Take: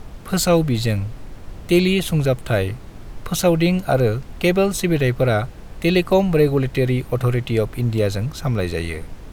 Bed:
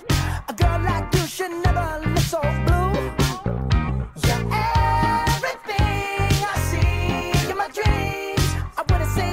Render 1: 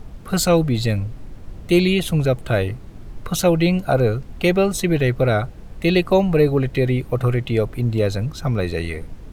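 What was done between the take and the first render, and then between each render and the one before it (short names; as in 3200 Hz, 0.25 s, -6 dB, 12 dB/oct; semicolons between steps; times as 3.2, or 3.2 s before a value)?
denoiser 6 dB, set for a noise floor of -38 dBFS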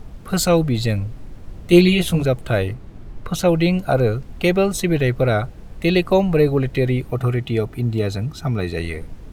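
1.69–2.23 doubler 17 ms -2 dB; 2.73–3.49 high shelf 4800 Hz -7 dB; 7.11–8.77 notch comb 530 Hz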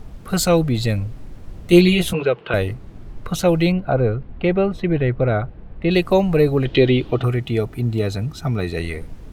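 2.13–2.54 speaker cabinet 230–3700 Hz, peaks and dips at 260 Hz -8 dB, 440 Hz +7 dB, 650 Hz -5 dB, 1000 Hz +6 dB, 1500 Hz +4 dB, 2800 Hz +9 dB; 3.72–5.91 air absorption 400 m; 6.65–7.24 EQ curve 190 Hz 0 dB, 320 Hz +9 dB, 480 Hz +4 dB, 2200 Hz +3 dB, 3200 Hz +15 dB, 9600 Hz -15 dB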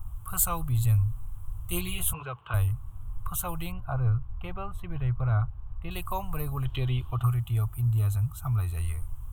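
EQ curve 110 Hz 0 dB, 190 Hz -24 dB, 340 Hz -26 dB, 500 Hz -27 dB, 1100 Hz -1 dB, 1900 Hz -22 dB, 3100 Hz -12 dB, 4700 Hz -25 dB, 8500 Hz +1 dB, 14000 Hz +8 dB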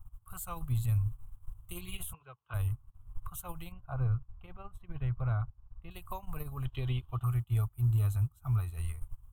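limiter -21 dBFS, peak gain reduction 9.5 dB; upward expander 2.5:1, over -46 dBFS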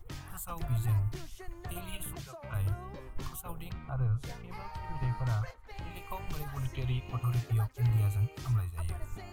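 add bed -24 dB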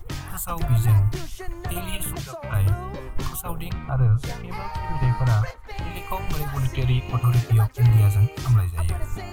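gain +11.5 dB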